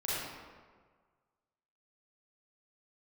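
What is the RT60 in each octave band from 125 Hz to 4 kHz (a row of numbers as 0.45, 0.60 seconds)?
1.6, 1.5, 1.6, 1.6, 1.3, 0.95 seconds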